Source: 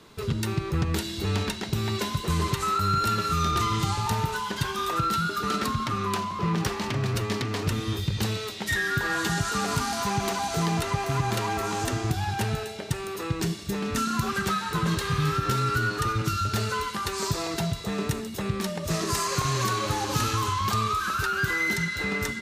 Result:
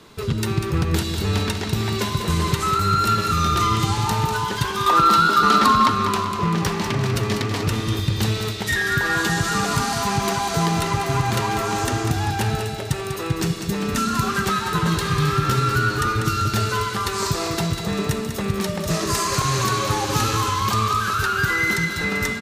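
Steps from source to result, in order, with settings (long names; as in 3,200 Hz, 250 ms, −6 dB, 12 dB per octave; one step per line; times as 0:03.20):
0:04.86–0:05.90: graphic EQ with 10 bands 125 Hz −7 dB, 250 Hz +6 dB, 1,000 Hz +11 dB, 4,000 Hz +5 dB
on a send: repeating echo 195 ms, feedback 52%, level −8 dB
on the sum: level +4.5 dB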